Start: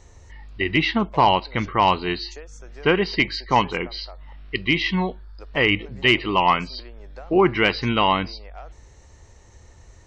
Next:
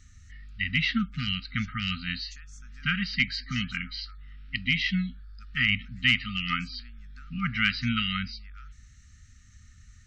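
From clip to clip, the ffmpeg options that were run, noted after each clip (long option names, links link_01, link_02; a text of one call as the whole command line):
ffmpeg -i in.wav -af "afftfilt=real='re*(1-between(b*sr/4096,260,1200))':imag='im*(1-between(b*sr/4096,260,1200))':win_size=4096:overlap=0.75,volume=-4dB" out.wav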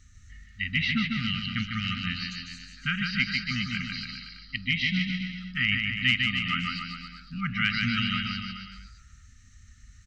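ffmpeg -i in.wav -af "aecho=1:1:150|285|406.5|515.8|614.3:0.631|0.398|0.251|0.158|0.1,volume=-1.5dB" out.wav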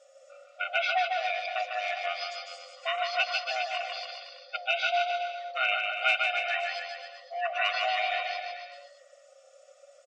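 ffmpeg -i in.wav -af "afftfilt=real='real(if(lt(b,1008),b+24*(1-2*mod(floor(b/24),2)),b),0)':imag='imag(if(lt(b,1008),b+24*(1-2*mod(floor(b/24),2)),b),0)':win_size=2048:overlap=0.75,aresample=22050,aresample=44100,aecho=1:1:4.2:0.54,volume=-3dB" out.wav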